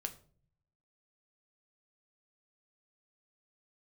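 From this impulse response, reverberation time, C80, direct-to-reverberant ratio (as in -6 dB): 0.50 s, 19.0 dB, 6.0 dB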